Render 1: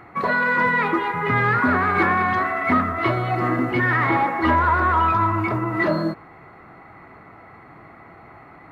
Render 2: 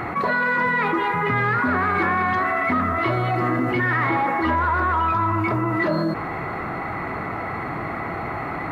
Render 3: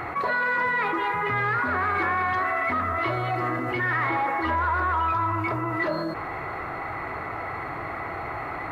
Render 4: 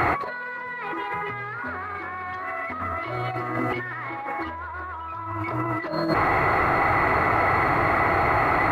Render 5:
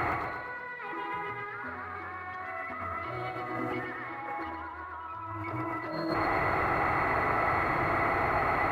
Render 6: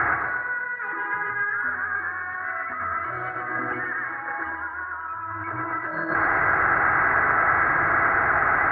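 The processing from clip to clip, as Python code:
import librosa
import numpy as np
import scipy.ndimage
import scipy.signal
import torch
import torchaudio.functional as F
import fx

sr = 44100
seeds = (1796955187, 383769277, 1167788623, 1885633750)

y1 = fx.env_flatten(x, sr, amount_pct=70)
y1 = y1 * 10.0 ** (-4.0 / 20.0)
y2 = fx.peak_eq(y1, sr, hz=200.0, db=-11.5, octaves=1.0)
y2 = y2 * 10.0 ** (-3.0 / 20.0)
y3 = fx.over_compress(y2, sr, threshold_db=-31.0, ratio=-0.5)
y3 = y3 * 10.0 ** (6.5 / 20.0)
y4 = fx.echo_feedback(y3, sr, ms=120, feedback_pct=52, wet_db=-5.0)
y4 = y4 * 10.0 ** (-8.5 / 20.0)
y5 = fx.lowpass_res(y4, sr, hz=1600.0, q=12.0)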